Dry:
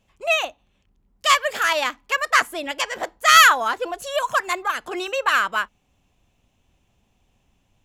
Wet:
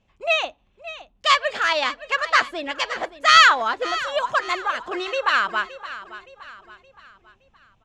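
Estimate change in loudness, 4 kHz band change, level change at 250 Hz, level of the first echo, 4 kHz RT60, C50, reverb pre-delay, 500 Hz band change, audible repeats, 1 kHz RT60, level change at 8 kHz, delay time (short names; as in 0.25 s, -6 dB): -0.5 dB, +0.5 dB, 0.0 dB, -15.0 dB, none, none, none, 0.0 dB, 3, none, -7.5 dB, 0.569 s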